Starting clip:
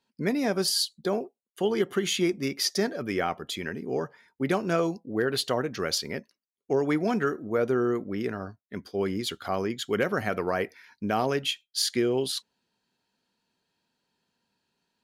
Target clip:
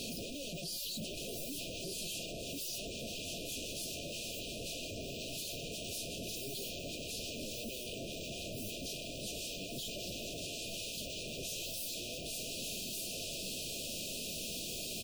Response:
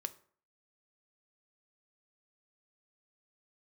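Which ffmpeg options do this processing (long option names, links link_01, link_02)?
-filter_complex "[0:a]aeval=exprs='val(0)+0.5*0.0251*sgn(val(0))':channel_layout=same,deesser=0.85,aecho=1:1:5.7:0.41,acompressor=threshold=-31dB:ratio=20,asplit=2[link_01][link_02];[link_02]aecho=0:1:1173:0.596[link_03];[link_01][link_03]amix=inputs=2:normalize=0,aeval=exprs='(mod(59.6*val(0)+1,2)-1)/59.6':channel_layout=same,aeval=exprs='(tanh(562*val(0)+0.1)-tanh(0.1))/562':channel_layout=same,afftfilt=real='re*(1-between(b*sr/4096,710,2400))':imag='im*(1-between(b*sr/4096,710,2400))':win_size=4096:overlap=0.75,volume=15dB" -ar 48000 -c:a wmav2 -b:a 32k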